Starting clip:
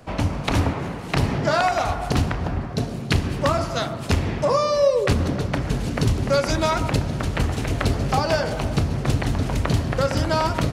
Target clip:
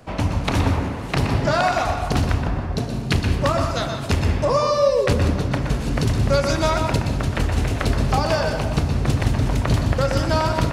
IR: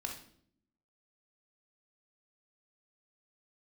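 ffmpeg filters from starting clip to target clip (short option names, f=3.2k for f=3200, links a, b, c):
-filter_complex "[0:a]asplit=2[a][b];[1:a]atrim=start_sample=2205,adelay=121[c];[b][c]afir=irnorm=-1:irlink=0,volume=-5.5dB[d];[a][d]amix=inputs=2:normalize=0"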